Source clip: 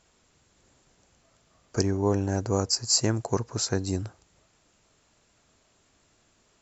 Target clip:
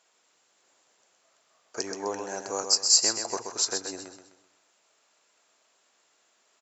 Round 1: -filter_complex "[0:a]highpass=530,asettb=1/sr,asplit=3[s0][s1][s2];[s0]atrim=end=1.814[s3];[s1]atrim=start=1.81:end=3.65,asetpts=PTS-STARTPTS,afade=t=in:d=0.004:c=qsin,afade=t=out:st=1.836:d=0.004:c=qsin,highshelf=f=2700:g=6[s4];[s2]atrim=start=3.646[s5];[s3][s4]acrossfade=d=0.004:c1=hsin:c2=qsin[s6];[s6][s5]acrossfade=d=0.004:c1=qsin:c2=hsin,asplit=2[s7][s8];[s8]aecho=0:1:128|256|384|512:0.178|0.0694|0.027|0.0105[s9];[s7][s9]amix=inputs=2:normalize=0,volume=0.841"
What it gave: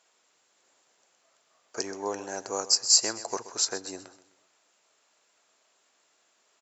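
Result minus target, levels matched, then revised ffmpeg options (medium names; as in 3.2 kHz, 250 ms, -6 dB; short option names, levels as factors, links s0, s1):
echo-to-direct -8.5 dB
-filter_complex "[0:a]highpass=530,asettb=1/sr,asplit=3[s0][s1][s2];[s0]atrim=end=1.814[s3];[s1]atrim=start=1.81:end=3.65,asetpts=PTS-STARTPTS,afade=t=in:d=0.004:c=qsin,afade=t=out:st=1.836:d=0.004:c=qsin,highshelf=f=2700:g=6[s4];[s2]atrim=start=3.646[s5];[s3][s4]acrossfade=d=0.004:c1=hsin:c2=qsin[s6];[s6][s5]acrossfade=d=0.004:c1=qsin:c2=hsin,asplit=2[s7][s8];[s8]aecho=0:1:128|256|384|512|640:0.473|0.185|0.072|0.0281|0.0109[s9];[s7][s9]amix=inputs=2:normalize=0,volume=0.841"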